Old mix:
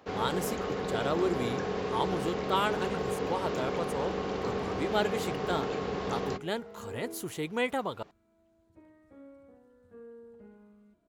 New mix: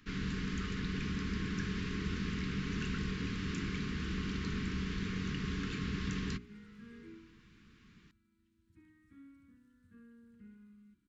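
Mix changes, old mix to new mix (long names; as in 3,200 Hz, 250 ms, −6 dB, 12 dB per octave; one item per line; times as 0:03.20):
speech: muted
first sound: remove high-pass filter 140 Hz 6 dB per octave
master: add Chebyshev band-stop filter 240–1,700 Hz, order 2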